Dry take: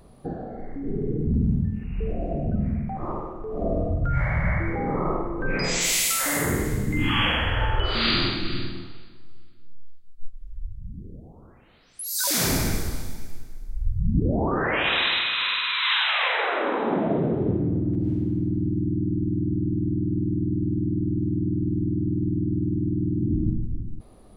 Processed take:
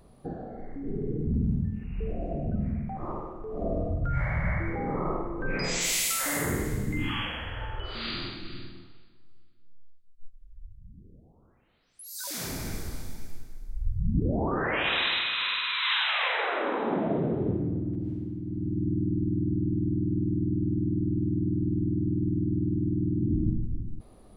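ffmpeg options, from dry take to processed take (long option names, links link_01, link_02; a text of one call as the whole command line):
ffmpeg -i in.wav -af "volume=12dB,afade=type=out:start_time=6.89:duration=0.4:silence=0.421697,afade=type=in:start_time=12.56:duration=0.71:silence=0.398107,afade=type=out:start_time=17.45:duration=0.97:silence=0.446684,afade=type=in:start_time=18.42:duration=0.47:silence=0.375837" out.wav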